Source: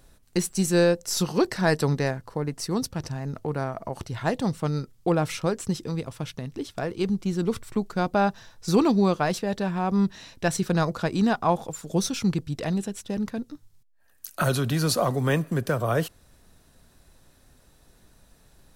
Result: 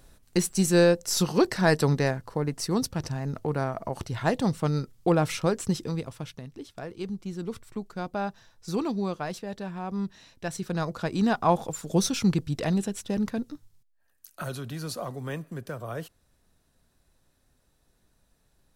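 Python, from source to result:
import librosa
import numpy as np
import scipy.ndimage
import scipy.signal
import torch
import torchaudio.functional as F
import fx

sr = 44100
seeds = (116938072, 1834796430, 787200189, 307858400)

y = fx.gain(x, sr, db=fx.line((5.81, 0.5), (6.57, -8.5), (10.5, -8.5), (11.56, 1.0), (13.49, 1.0), (14.27, -11.0)))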